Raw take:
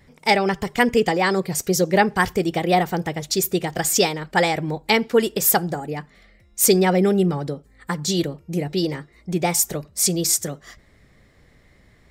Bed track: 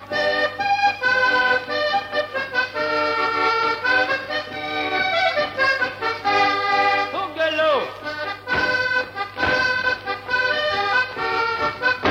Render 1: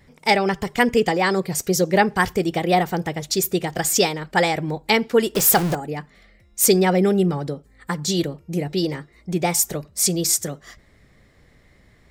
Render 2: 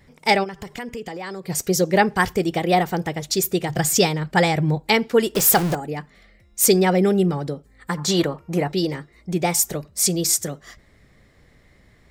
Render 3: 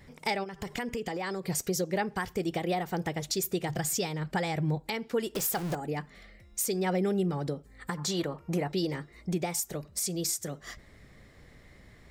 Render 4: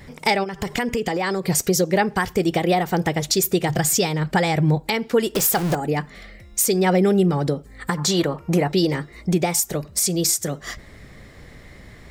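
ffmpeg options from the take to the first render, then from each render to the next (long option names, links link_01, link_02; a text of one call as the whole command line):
ffmpeg -i in.wav -filter_complex "[0:a]asettb=1/sr,asplit=3[link_01][link_02][link_03];[link_01]atrim=end=5.354[link_04];[link_02]atrim=start=5.35:end=5.75,asetpts=PTS-STARTPTS,afade=type=in:duration=0.004:curve=qsin,afade=type=out:start_time=0.396:duration=0.004:curve=qsin,aeval=exprs='val(0)+0.5*0.0841*sgn(val(0))':channel_layout=same[link_05];[link_03]atrim=start=5.746[link_06];[link_04][link_05]acrossfade=duration=0.004:curve1=hsin:curve2=qsin[link_07];[link_07][link_06]acrossfade=duration=0.004:curve1=qsin:curve2=hsin" out.wav
ffmpeg -i in.wav -filter_complex "[0:a]asplit=3[link_01][link_02][link_03];[link_01]afade=type=out:start_time=0.43:duration=0.02[link_04];[link_02]acompressor=threshold=-31dB:ratio=4:attack=3.2:release=140:knee=1:detection=peak,afade=type=in:start_time=0.43:duration=0.02,afade=type=out:start_time=1.48:duration=0.02[link_05];[link_03]afade=type=in:start_time=1.48:duration=0.02[link_06];[link_04][link_05][link_06]amix=inputs=3:normalize=0,asettb=1/sr,asplit=3[link_07][link_08][link_09];[link_07]atrim=end=3.694[link_10];[link_08]atrim=start=3.69:end=4.8,asetpts=PTS-STARTPTS,afade=type=in:duration=0.004:curve=qsin,afade=type=out:start_time=1.106:duration=0.004:curve=qsin,equalizer=frequency=130:width=1.5:gain=10.5[link_11];[link_09]atrim=start=4.796[link_12];[link_10][link_11]acrossfade=duration=0.004:curve1=hsin:curve2=qsin[link_13];[link_13][link_12]acrossfade=duration=0.004:curve1=qsin:curve2=hsin,asettb=1/sr,asplit=3[link_14][link_15][link_16];[link_14]atrim=end=7.974[link_17];[link_15]atrim=start=7.97:end=8.72,asetpts=PTS-STARTPTS,afade=type=in:duration=0.004:curve=qsin,afade=type=out:start_time=0.746:duration=0.004:curve=qsin,equalizer=frequency=1100:width=0.85:gain=14.5[link_18];[link_16]atrim=start=8.716[link_19];[link_17][link_18]acrossfade=duration=0.004:curve1=hsin:curve2=qsin[link_20];[link_20][link_19]acrossfade=duration=0.004:curve1=qsin:curve2=hsin" out.wav
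ffmpeg -i in.wav -af "acompressor=threshold=-32dB:ratio=2,alimiter=limit=-19.5dB:level=0:latency=1:release=338" out.wav
ffmpeg -i in.wav -af "volume=11dB" out.wav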